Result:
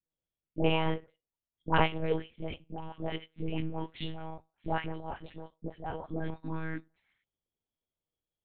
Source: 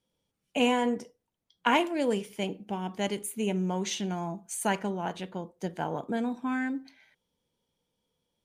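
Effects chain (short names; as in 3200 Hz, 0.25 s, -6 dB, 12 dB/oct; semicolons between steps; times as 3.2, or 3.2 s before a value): dispersion highs, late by 0.105 s, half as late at 860 Hz; monotone LPC vocoder at 8 kHz 160 Hz; upward expander 1.5:1, over -50 dBFS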